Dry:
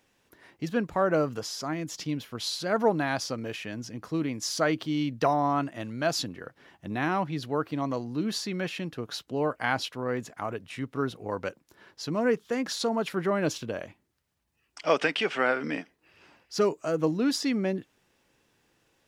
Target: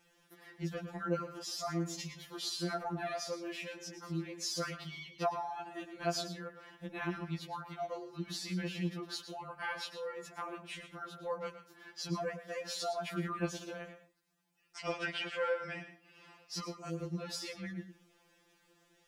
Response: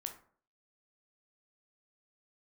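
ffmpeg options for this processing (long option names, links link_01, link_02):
-filter_complex "[0:a]acompressor=threshold=-40dB:ratio=2,asplit=2[link_01][link_02];[1:a]atrim=start_sample=2205,afade=type=out:start_time=0.22:duration=0.01,atrim=end_sample=10143,adelay=112[link_03];[link_02][link_03]afir=irnorm=-1:irlink=0,volume=-8dB[link_04];[link_01][link_04]amix=inputs=2:normalize=0,afftfilt=real='re*2.83*eq(mod(b,8),0)':imag='im*2.83*eq(mod(b,8),0)':win_size=2048:overlap=0.75,volume=1.5dB"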